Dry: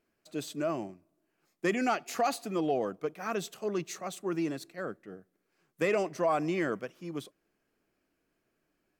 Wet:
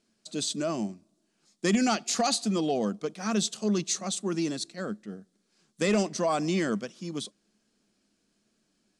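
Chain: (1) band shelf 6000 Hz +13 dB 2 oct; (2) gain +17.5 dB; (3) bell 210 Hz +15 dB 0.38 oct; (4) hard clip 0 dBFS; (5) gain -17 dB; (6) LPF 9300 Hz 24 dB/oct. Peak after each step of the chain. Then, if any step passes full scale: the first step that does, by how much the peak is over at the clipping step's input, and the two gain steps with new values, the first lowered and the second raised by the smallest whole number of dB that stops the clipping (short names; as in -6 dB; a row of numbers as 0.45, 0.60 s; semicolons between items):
-14.0, +3.5, +4.0, 0.0, -17.0, -15.0 dBFS; step 2, 4.0 dB; step 2 +13.5 dB, step 5 -13 dB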